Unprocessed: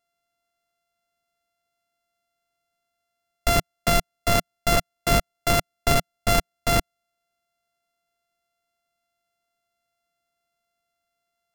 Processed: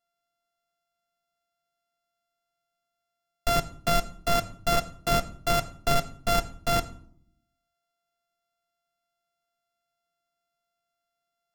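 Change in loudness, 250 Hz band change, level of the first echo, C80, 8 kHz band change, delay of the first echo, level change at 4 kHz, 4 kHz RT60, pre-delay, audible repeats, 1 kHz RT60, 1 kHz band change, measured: −4.0 dB, −5.0 dB, no echo audible, 19.5 dB, −6.0 dB, no echo audible, −4.0 dB, 0.35 s, 4 ms, no echo audible, 0.55 s, −2.0 dB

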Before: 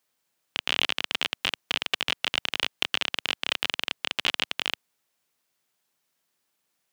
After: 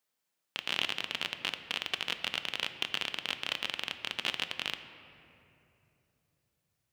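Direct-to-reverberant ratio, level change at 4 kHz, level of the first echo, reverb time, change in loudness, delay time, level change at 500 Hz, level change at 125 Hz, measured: 9.0 dB, −6.5 dB, no echo audible, 3.0 s, −6.5 dB, no echo audible, −6.5 dB, −5.5 dB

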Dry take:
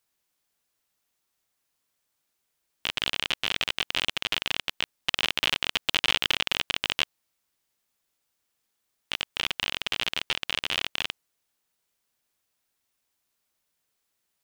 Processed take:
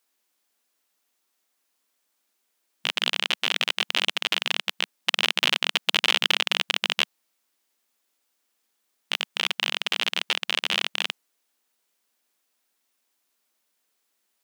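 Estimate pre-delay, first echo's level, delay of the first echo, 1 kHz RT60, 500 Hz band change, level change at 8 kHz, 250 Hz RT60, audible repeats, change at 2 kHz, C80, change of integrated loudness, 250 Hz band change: no reverb audible, no echo audible, no echo audible, no reverb audible, +3.5 dB, +3.5 dB, no reverb audible, no echo audible, +3.5 dB, no reverb audible, +3.5 dB, +2.5 dB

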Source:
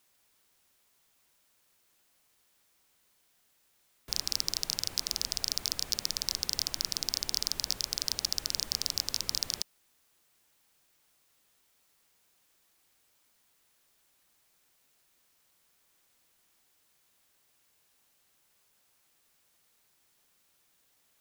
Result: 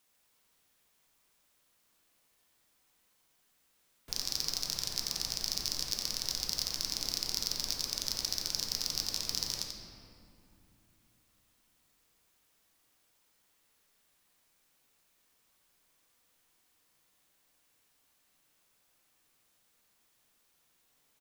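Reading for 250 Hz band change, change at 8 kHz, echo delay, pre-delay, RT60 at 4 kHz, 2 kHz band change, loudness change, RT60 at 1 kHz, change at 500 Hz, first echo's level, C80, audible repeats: +0.5 dB, −2.0 dB, 89 ms, 4 ms, 1.5 s, −1.5 dB, −2.0 dB, 2.6 s, −0.5 dB, −6.5 dB, 2.5 dB, 1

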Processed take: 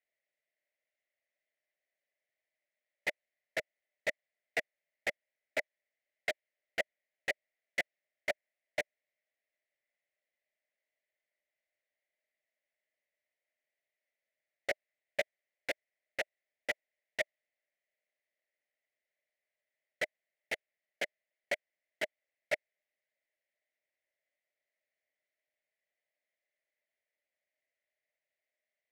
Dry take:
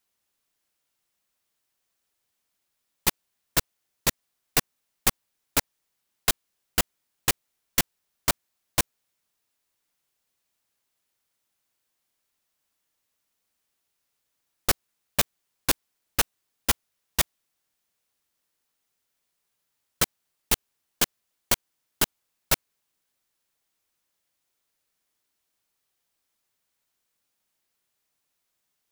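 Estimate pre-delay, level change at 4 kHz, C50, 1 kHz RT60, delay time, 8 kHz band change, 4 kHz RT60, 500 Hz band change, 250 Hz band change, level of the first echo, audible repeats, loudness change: no reverb audible, −15.5 dB, no reverb audible, no reverb audible, no echo audible, −25.0 dB, no reverb audible, −2.5 dB, −18.5 dB, no echo audible, no echo audible, −12.0 dB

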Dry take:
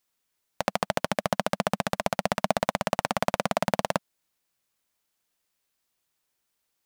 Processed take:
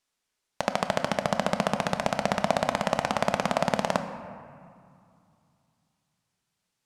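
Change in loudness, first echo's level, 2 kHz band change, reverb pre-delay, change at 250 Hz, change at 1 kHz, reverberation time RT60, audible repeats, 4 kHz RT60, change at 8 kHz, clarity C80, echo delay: +0.5 dB, no echo audible, +0.5 dB, 5 ms, +1.5 dB, +1.0 dB, 2.4 s, no echo audible, 1.2 s, −1.0 dB, 10.5 dB, no echo audible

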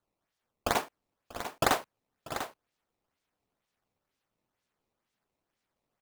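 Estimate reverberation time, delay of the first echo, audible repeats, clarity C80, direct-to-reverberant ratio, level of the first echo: no reverb audible, 640 ms, 2, no reverb audible, no reverb audible, −19.0 dB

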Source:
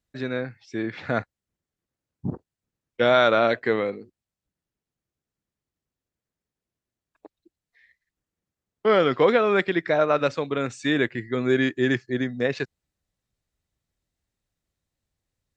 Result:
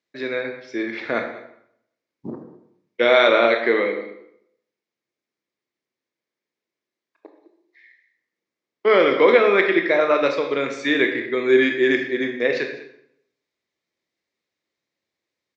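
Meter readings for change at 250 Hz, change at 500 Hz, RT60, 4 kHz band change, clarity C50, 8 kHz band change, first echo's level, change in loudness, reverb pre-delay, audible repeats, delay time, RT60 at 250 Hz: +2.0 dB, +4.5 dB, 0.70 s, +4.5 dB, 6.5 dB, can't be measured, −18.5 dB, +4.0 dB, 21 ms, 1, 200 ms, 0.75 s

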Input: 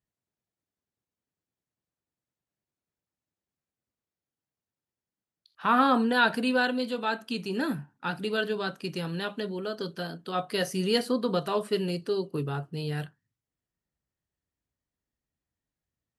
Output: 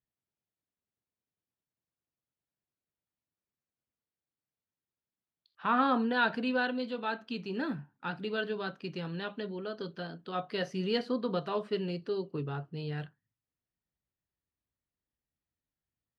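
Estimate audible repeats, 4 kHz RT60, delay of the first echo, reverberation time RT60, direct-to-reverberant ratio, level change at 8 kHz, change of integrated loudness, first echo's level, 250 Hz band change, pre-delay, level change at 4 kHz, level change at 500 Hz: no echo audible, no reverb audible, no echo audible, no reverb audible, no reverb audible, below −15 dB, −5.0 dB, no echo audible, −4.5 dB, no reverb audible, −7.0 dB, −5.0 dB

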